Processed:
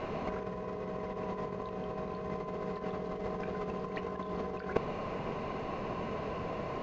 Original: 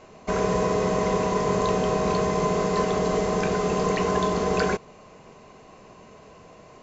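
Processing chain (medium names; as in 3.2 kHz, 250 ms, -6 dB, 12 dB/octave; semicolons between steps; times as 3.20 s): compressor with a negative ratio -32 dBFS, ratio -0.5; distance through air 250 m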